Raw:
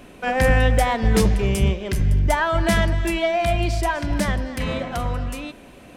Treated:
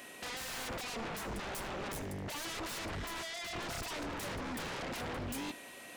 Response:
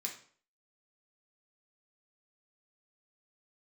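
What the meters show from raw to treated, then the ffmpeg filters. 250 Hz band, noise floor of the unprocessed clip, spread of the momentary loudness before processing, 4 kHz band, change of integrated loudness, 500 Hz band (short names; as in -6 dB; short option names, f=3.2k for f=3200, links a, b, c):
-18.5 dB, -45 dBFS, 8 LU, -10.5 dB, -18.5 dB, -20.5 dB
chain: -filter_complex "[0:a]afwtdn=0.0708,highpass=f=690:p=1,highshelf=f=4.1k:g=9.5,acompressor=threshold=-36dB:ratio=3,asoftclip=type=tanh:threshold=-38dB,aeval=exprs='val(0)+0.000447*sin(2*PI*1900*n/s)':c=same,aeval=exprs='0.0133*sin(PI/2*2.51*val(0)/0.0133)':c=same,asplit=2[a][b];[1:a]atrim=start_sample=2205,adelay=76[c];[b][c]afir=irnorm=-1:irlink=0,volume=-18dB[d];[a][d]amix=inputs=2:normalize=0,volume=1dB"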